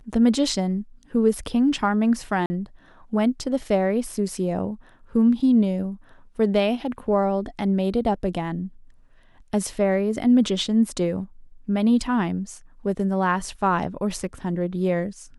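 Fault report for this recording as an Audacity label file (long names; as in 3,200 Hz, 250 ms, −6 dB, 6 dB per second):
2.460000	2.500000	drop-out 40 ms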